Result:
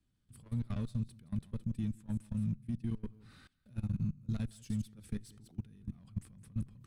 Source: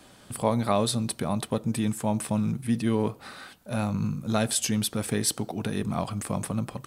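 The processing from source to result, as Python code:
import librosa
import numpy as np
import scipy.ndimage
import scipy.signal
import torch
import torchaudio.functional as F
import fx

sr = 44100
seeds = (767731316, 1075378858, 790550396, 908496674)

p1 = 10.0 ** (-22.5 / 20.0) * np.tanh(x / 10.0 ** (-22.5 / 20.0))
p2 = fx.tilt_eq(p1, sr, slope=-2.5)
p3 = p2 + fx.echo_single(p2, sr, ms=169, db=-12.0, dry=0)
p4 = fx.level_steps(p3, sr, step_db=23)
p5 = fx.tone_stack(p4, sr, knobs='6-0-2')
y = F.gain(torch.from_numpy(p5), 6.5).numpy()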